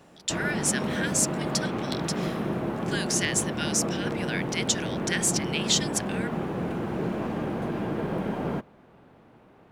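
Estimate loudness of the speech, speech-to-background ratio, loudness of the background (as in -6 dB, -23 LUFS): -28.5 LUFS, 2.0 dB, -30.5 LUFS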